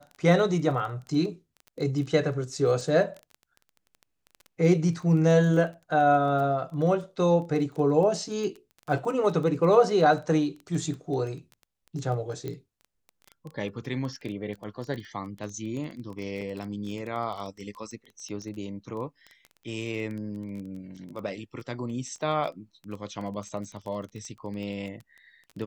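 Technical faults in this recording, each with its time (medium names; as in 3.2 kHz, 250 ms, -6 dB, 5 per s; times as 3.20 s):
crackle 16 per s -34 dBFS
12.48 s: pop -22 dBFS
16.41–16.42 s: dropout 6.1 ms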